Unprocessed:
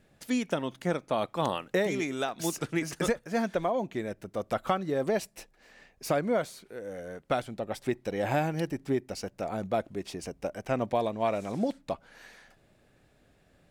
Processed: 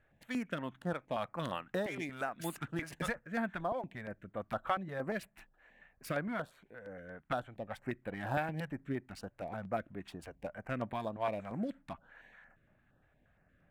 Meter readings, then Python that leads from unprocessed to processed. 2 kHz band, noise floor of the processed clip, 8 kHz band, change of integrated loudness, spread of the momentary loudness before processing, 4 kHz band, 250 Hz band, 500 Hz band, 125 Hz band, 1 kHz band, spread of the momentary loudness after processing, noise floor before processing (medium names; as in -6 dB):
-4.0 dB, -72 dBFS, -13.5 dB, -8.0 dB, 10 LU, -9.5 dB, -8.0 dB, -10.0 dB, -6.0 dB, -6.5 dB, 13 LU, -65 dBFS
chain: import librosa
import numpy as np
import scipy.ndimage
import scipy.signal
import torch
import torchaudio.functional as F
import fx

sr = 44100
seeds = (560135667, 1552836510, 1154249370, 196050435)

y = fx.wiener(x, sr, points=9)
y = fx.graphic_eq_15(y, sr, hz=(400, 1600, 6300), db=(-7, 6, -7))
y = fx.filter_held_notch(y, sr, hz=8.6, low_hz=200.0, high_hz=5600.0)
y = y * 10.0 ** (-5.0 / 20.0)